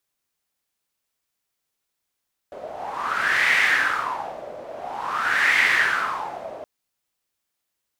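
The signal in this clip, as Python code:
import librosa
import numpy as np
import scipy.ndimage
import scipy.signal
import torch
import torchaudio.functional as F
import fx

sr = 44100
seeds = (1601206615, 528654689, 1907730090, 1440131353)

y = fx.wind(sr, seeds[0], length_s=4.12, low_hz=590.0, high_hz=2000.0, q=6.5, gusts=2, swing_db=18.0)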